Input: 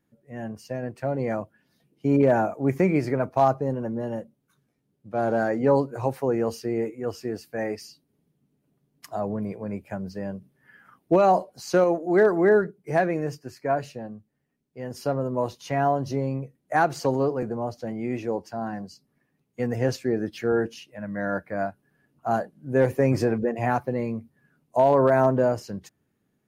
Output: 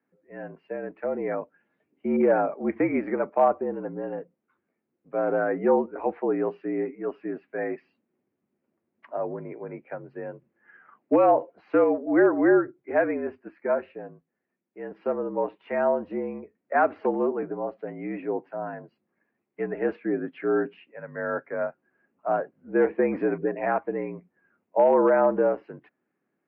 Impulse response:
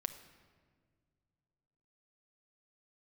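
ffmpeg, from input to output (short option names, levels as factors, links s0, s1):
-af "highpass=f=300:t=q:w=0.5412,highpass=f=300:t=q:w=1.307,lowpass=f=2500:t=q:w=0.5176,lowpass=f=2500:t=q:w=0.7071,lowpass=f=2500:t=q:w=1.932,afreqshift=-52"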